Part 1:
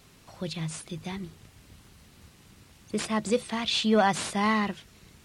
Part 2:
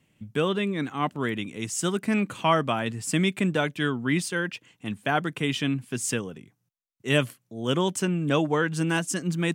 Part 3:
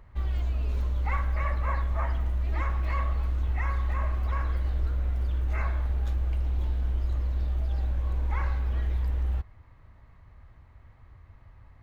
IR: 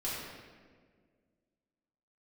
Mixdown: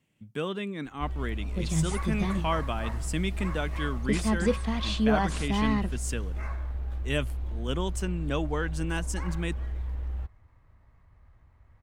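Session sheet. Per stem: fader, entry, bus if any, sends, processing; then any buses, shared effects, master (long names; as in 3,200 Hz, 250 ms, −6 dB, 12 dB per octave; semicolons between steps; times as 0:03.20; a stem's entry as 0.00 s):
−13.0 dB, 1.15 s, no send, low-shelf EQ 450 Hz +9.5 dB; automatic gain control gain up to 12.5 dB
−7.0 dB, 0.00 s, no send, no processing
−5.5 dB, 0.85 s, no send, running median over 9 samples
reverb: not used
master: no processing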